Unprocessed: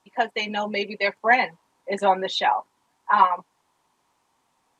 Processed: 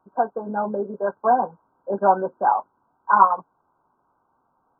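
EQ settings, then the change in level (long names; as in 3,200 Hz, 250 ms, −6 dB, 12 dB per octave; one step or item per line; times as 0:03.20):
linear-phase brick-wall low-pass 1,600 Hz
+2.5 dB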